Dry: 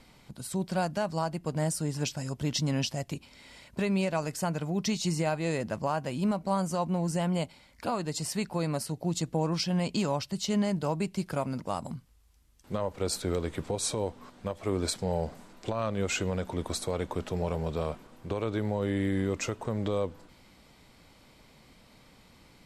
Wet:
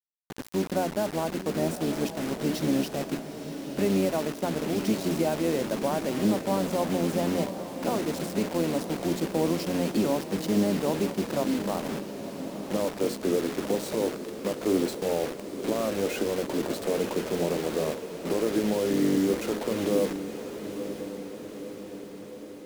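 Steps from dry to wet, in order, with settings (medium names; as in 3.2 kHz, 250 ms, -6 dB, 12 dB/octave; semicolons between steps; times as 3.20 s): octave divider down 1 oct, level +1 dB; high-pass 260 Hz 24 dB/octave; tilt EQ -4.5 dB/octave; hum notches 60/120/180/240/300/360/420/480 Hz; in parallel at -2 dB: compression 6:1, threshold -41 dBFS, peak gain reduction 19.5 dB; on the sum: dynamic bell 1.1 kHz, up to -4 dB, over -39 dBFS, Q 1.2; bit crusher 6-bit; vibrato 0.44 Hz 6 cents; on a send: echo that smears into a reverb 948 ms, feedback 62%, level -10 dB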